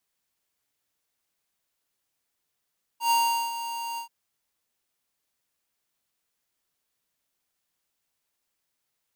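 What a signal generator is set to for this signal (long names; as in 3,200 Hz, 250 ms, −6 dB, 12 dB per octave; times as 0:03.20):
note with an ADSR envelope square 931 Hz, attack 106 ms, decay 405 ms, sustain −12 dB, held 0.98 s, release 101 ms −21 dBFS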